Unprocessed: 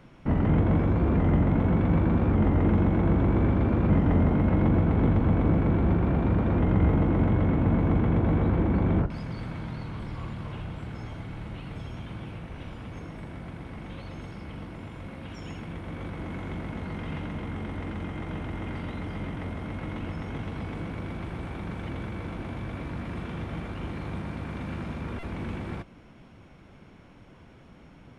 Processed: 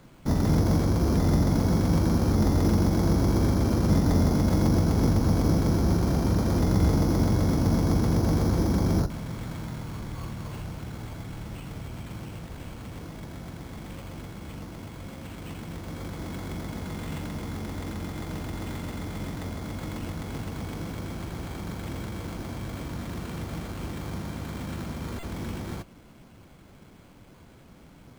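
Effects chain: careless resampling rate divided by 8×, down none, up hold

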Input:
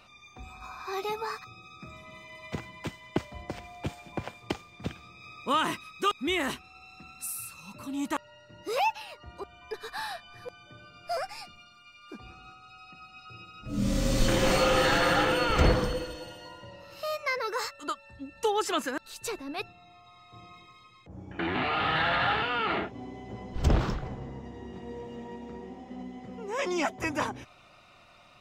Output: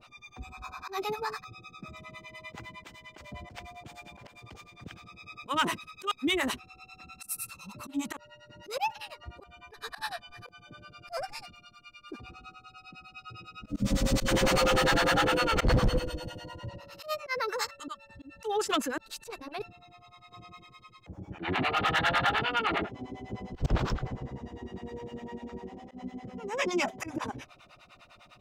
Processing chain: 15.67–16.78 low shelf 220 Hz +10.5 dB; auto swell 0.102 s; harmonic tremolo 9.9 Hz, depth 100%, crossover 570 Hz; hard clip -24.5 dBFS, distortion -12 dB; 19.15–19.57 core saturation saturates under 730 Hz; gain +5 dB

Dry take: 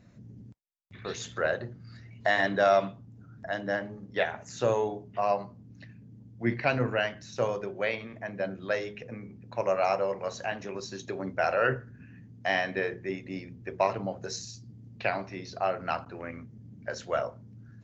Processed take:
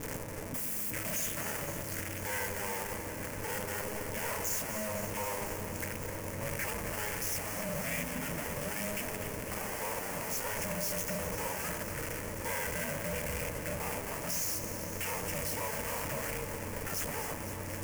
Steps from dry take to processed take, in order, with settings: infinite clipping; high shelf 5000 Hz +8 dB; notches 60/120 Hz; 7.84–8.44 frequency shift -71 Hz; fixed phaser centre 820 Hz, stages 8; backlash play -42.5 dBFS; ring modulator 210 Hz; on a send: echo with dull and thin repeats by turns 0.127 s, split 930 Hz, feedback 88%, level -9 dB

